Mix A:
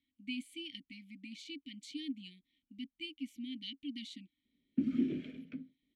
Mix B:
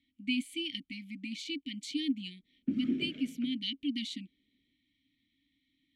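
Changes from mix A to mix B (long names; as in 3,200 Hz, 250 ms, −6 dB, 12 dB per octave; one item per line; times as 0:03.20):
speech +8.5 dB
background: entry −2.10 s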